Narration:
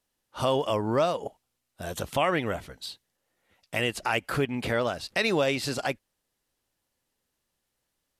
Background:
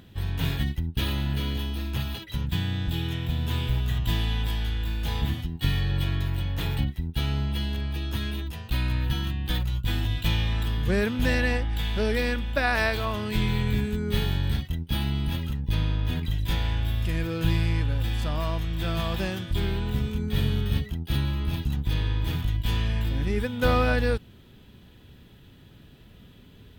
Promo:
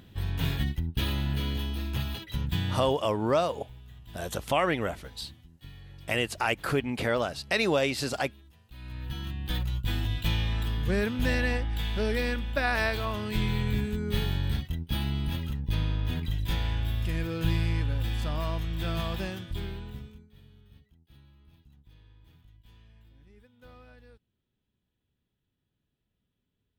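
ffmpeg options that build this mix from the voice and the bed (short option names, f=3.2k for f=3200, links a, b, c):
-filter_complex "[0:a]adelay=2350,volume=-0.5dB[a];[1:a]volume=17.5dB,afade=t=out:st=2.71:d=0.24:silence=0.0944061,afade=t=in:st=8.74:d=0.89:silence=0.105925,afade=t=out:st=18.96:d=1.32:silence=0.0421697[b];[a][b]amix=inputs=2:normalize=0"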